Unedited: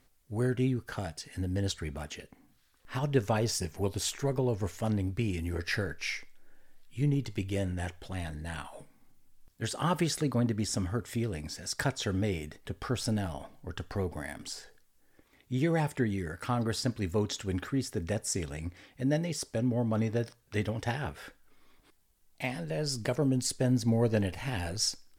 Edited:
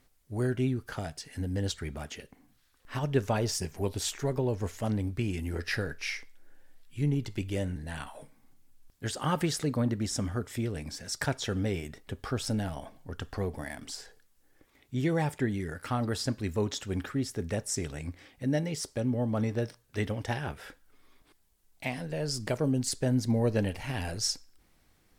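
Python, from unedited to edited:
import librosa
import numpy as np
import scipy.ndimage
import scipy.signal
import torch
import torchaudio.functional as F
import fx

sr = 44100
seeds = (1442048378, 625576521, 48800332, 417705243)

y = fx.edit(x, sr, fx.cut(start_s=7.76, length_s=0.58), tone=tone)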